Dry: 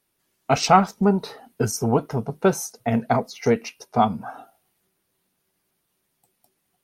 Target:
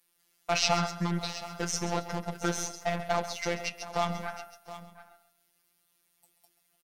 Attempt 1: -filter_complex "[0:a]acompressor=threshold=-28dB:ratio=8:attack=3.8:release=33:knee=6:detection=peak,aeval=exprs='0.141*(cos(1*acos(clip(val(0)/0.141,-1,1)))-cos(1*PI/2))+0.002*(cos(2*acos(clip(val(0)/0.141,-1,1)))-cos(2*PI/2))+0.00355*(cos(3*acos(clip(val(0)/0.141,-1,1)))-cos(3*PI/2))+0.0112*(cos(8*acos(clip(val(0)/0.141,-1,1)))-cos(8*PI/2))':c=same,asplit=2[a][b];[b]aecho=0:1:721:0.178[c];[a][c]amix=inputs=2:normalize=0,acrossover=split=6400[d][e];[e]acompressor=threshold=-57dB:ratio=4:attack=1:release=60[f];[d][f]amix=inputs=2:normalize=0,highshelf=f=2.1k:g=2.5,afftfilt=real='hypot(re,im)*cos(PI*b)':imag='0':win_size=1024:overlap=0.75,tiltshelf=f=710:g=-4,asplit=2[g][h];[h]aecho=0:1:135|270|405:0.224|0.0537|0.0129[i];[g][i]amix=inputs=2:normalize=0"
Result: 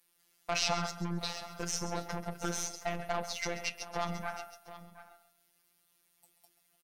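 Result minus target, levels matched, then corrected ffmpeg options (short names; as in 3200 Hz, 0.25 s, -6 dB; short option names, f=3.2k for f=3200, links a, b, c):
compressor: peak gain reduction +7 dB
-filter_complex "[0:a]acompressor=threshold=-20dB:ratio=8:attack=3.8:release=33:knee=6:detection=peak,aeval=exprs='0.141*(cos(1*acos(clip(val(0)/0.141,-1,1)))-cos(1*PI/2))+0.002*(cos(2*acos(clip(val(0)/0.141,-1,1)))-cos(2*PI/2))+0.00355*(cos(3*acos(clip(val(0)/0.141,-1,1)))-cos(3*PI/2))+0.0112*(cos(8*acos(clip(val(0)/0.141,-1,1)))-cos(8*PI/2))':c=same,asplit=2[a][b];[b]aecho=0:1:721:0.178[c];[a][c]amix=inputs=2:normalize=0,acrossover=split=6400[d][e];[e]acompressor=threshold=-57dB:ratio=4:attack=1:release=60[f];[d][f]amix=inputs=2:normalize=0,highshelf=f=2.1k:g=2.5,afftfilt=real='hypot(re,im)*cos(PI*b)':imag='0':win_size=1024:overlap=0.75,tiltshelf=f=710:g=-4,asplit=2[g][h];[h]aecho=0:1:135|270|405:0.224|0.0537|0.0129[i];[g][i]amix=inputs=2:normalize=0"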